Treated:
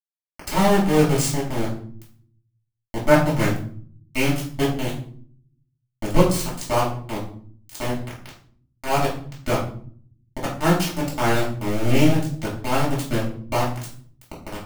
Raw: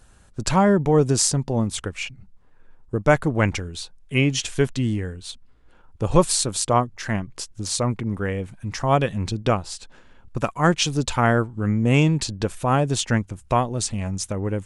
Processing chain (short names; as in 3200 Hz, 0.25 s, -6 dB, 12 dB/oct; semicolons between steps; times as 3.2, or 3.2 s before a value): sample gate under -16 dBFS; flange 0.94 Hz, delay 5.7 ms, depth 6.7 ms, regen +84%; reverb RT60 0.55 s, pre-delay 3 ms, DRR -6 dB; gain -6 dB